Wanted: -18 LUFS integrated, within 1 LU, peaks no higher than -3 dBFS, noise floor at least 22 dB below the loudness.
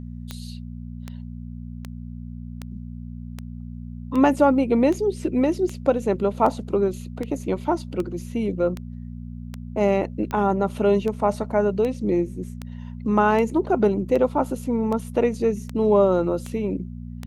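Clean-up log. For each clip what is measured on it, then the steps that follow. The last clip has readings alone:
clicks 23; hum 60 Hz; harmonics up to 240 Hz; hum level -32 dBFS; loudness -22.5 LUFS; peak -4.5 dBFS; loudness target -18.0 LUFS
-> de-click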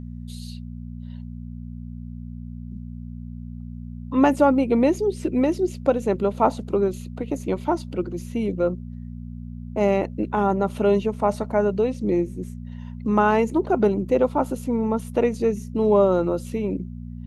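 clicks 0; hum 60 Hz; harmonics up to 240 Hz; hum level -32 dBFS
-> de-hum 60 Hz, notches 4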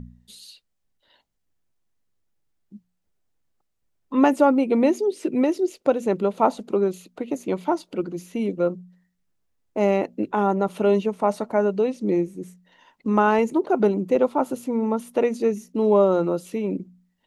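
hum none; loudness -22.5 LUFS; peak -4.0 dBFS; loudness target -18.0 LUFS
-> gain +4.5 dB; limiter -3 dBFS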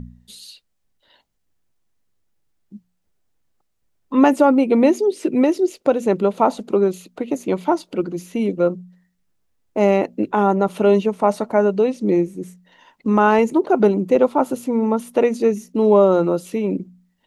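loudness -18.5 LUFS; peak -3.0 dBFS; noise floor -70 dBFS

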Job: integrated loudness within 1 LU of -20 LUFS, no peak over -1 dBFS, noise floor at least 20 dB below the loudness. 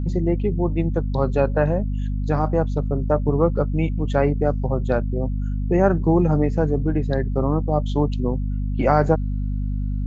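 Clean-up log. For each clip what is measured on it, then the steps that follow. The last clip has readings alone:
hum 50 Hz; harmonics up to 250 Hz; hum level -21 dBFS; loudness -22.0 LUFS; peak -3.5 dBFS; loudness target -20.0 LUFS
-> notches 50/100/150/200/250 Hz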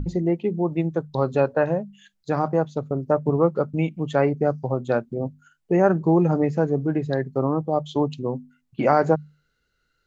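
hum none; loudness -23.0 LUFS; peak -4.5 dBFS; loudness target -20.0 LUFS
-> gain +3 dB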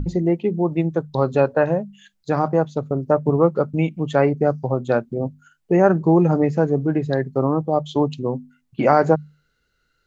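loudness -20.0 LUFS; peak -1.5 dBFS; noise floor -70 dBFS

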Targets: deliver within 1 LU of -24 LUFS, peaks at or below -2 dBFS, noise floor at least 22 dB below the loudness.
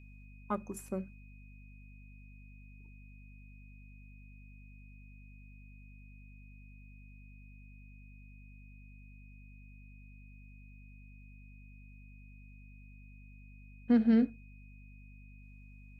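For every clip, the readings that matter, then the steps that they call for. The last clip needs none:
hum 50 Hz; harmonics up to 250 Hz; hum level -51 dBFS; steady tone 2500 Hz; tone level -62 dBFS; loudness -31.5 LUFS; peak -16.5 dBFS; loudness target -24.0 LUFS
-> notches 50/100/150/200/250 Hz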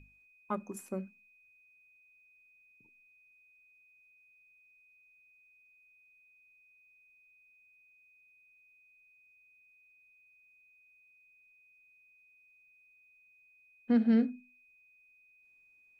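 hum none; steady tone 2500 Hz; tone level -62 dBFS
-> notch 2500 Hz, Q 30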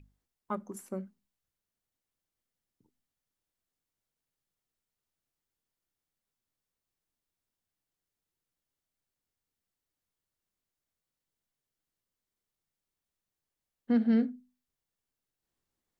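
steady tone none; loudness -31.5 LUFS; peak -17.5 dBFS; loudness target -24.0 LUFS
-> gain +7.5 dB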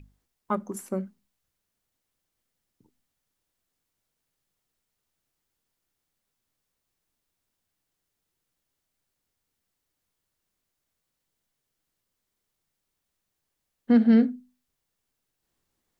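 loudness -24.0 LUFS; peak -10.0 dBFS; noise floor -82 dBFS

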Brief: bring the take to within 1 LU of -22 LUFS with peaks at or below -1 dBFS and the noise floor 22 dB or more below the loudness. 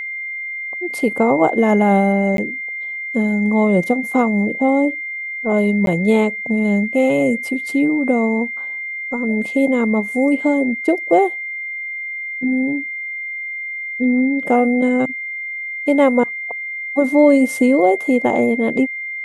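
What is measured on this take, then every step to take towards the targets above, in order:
dropouts 2; longest dropout 12 ms; steady tone 2100 Hz; tone level -24 dBFS; loudness -17.5 LUFS; peak -1.5 dBFS; loudness target -22.0 LUFS
-> interpolate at 2.37/5.86, 12 ms; notch 2100 Hz, Q 30; gain -4.5 dB

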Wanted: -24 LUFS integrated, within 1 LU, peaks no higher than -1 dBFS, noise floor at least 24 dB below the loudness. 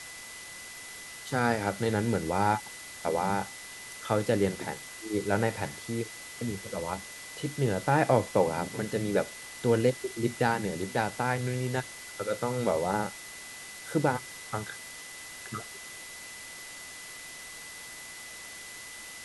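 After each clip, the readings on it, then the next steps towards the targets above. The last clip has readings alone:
steady tone 2000 Hz; tone level -46 dBFS; noise floor -44 dBFS; noise floor target -56 dBFS; loudness -31.5 LUFS; peak -9.5 dBFS; loudness target -24.0 LUFS
-> notch 2000 Hz, Q 30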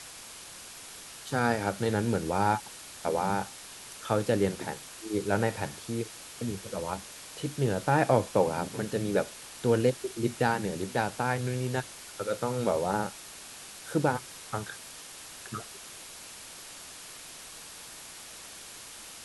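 steady tone none; noise floor -46 dBFS; noise floor target -55 dBFS
-> denoiser 9 dB, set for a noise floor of -46 dBFS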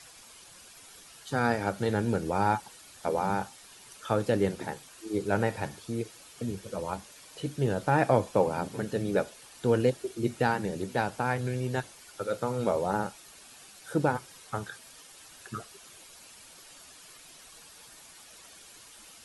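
noise floor -52 dBFS; noise floor target -55 dBFS
-> denoiser 6 dB, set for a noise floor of -52 dBFS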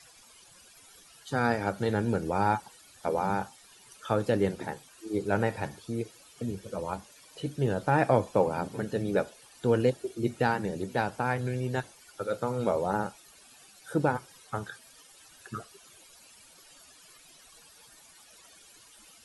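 noise floor -56 dBFS; loudness -30.5 LUFS; peak -9.5 dBFS; loudness target -24.0 LUFS
-> gain +6.5 dB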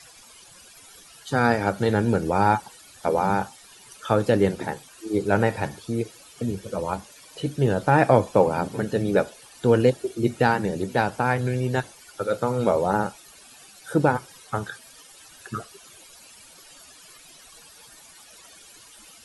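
loudness -24.0 LUFS; peak -3.0 dBFS; noise floor -50 dBFS

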